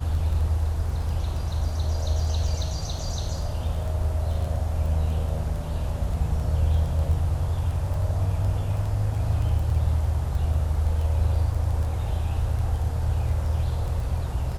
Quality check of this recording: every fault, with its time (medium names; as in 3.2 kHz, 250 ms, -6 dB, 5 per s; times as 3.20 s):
crackle 11 per s